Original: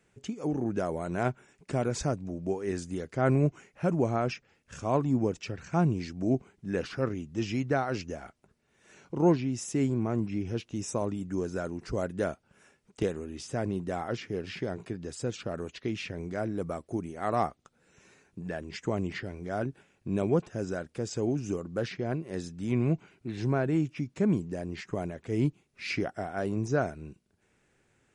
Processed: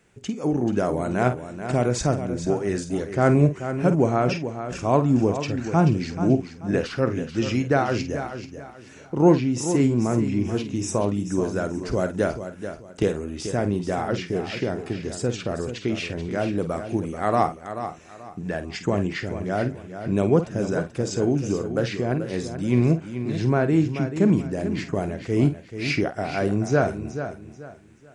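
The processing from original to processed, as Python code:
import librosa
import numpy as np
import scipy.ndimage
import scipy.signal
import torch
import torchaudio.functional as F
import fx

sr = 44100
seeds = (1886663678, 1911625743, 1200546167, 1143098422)

y = fx.doubler(x, sr, ms=49.0, db=-11.0)
y = fx.echo_feedback(y, sr, ms=434, feedback_pct=29, wet_db=-10)
y = y * 10.0 ** (7.0 / 20.0)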